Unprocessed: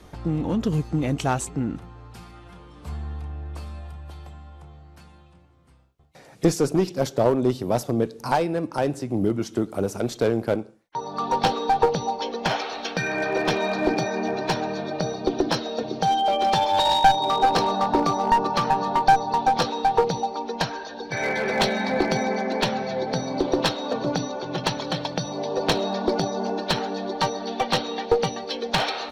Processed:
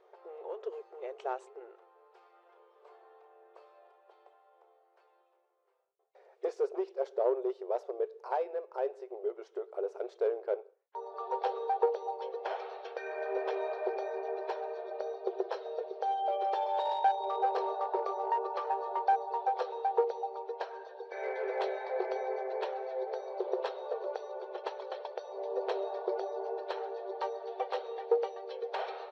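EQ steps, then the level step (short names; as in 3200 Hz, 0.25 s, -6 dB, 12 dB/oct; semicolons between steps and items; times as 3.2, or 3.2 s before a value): brick-wall FIR high-pass 370 Hz; tape spacing loss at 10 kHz 26 dB; tilt shelf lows +6 dB, about 750 Hz; -8.5 dB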